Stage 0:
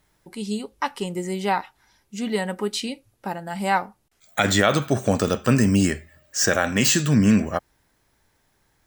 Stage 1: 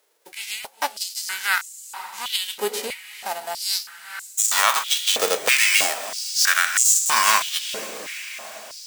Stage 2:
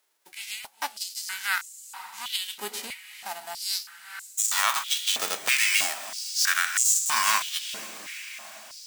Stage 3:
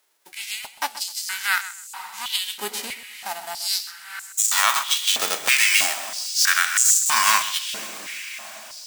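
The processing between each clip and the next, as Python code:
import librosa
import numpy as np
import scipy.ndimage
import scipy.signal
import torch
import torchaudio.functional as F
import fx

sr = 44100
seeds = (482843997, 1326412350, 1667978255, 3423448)

y1 = fx.envelope_flatten(x, sr, power=0.3)
y1 = fx.echo_diffused(y1, sr, ms=477, feedback_pct=62, wet_db=-13)
y1 = fx.filter_held_highpass(y1, sr, hz=3.1, low_hz=460.0, high_hz=7100.0)
y1 = F.gain(torch.from_numpy(y1), -2.0).numpy()
y2 = fx.peak_eq(y1, sr, hz=480.0, db=-14.0, octaves=0.66)
y2 = F.gain(torch.from_numpy(y2), -5.0).numpy()
y3 = fx.echo_feedback(y2, sr, ms=129, feedback_pct=21, wet_db=-14.5)
y3 = F.gain(torch.from_numpy(y3), 5.0).numpy()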